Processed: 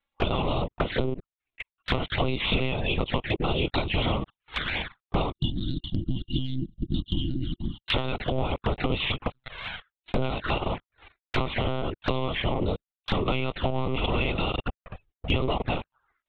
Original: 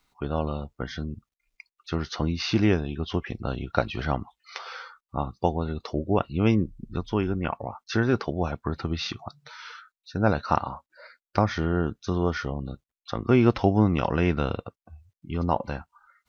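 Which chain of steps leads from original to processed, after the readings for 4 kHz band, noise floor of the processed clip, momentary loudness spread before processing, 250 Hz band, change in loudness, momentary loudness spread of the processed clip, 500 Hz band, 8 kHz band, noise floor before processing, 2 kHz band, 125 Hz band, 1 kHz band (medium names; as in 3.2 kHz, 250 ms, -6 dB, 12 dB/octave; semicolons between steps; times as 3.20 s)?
+7.0 dB, under -85 dBFS, 17 LU, -4.5 dB, -2.0 dB, 9 LU, -2.0 dB, no reading, under -85 dBFS, +2.5 dB, -2.0 dB, -2.0 dB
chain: spectral peaks clipped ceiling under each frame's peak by 20 dB; waveshaping leveller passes 5; monotone LPC vocoder at 8 kHz 130 Hz; compression 12:1, threshold -20 dBFS, peak gain reduction 19 dB; time-frequency box 5.34–7.88 s, 360–2800 Hz -28 dB; touch-sensitive flanger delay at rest 3.6 ms, full sweep at -21.5 dBFS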